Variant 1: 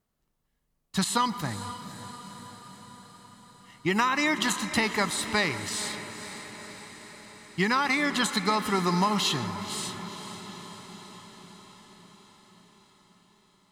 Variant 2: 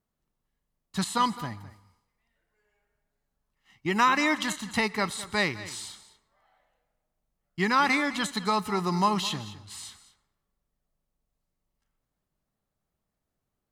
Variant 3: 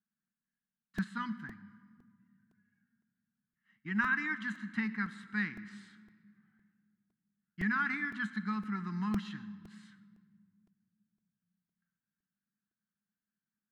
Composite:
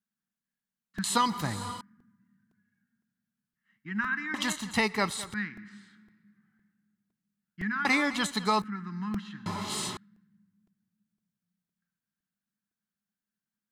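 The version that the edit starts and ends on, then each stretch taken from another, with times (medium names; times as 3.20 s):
3
1.04–1.81 s: from 1
4.34–5.34 s: from 2
7.85–8.62 s: from 2
9.46–9.97 s: from 1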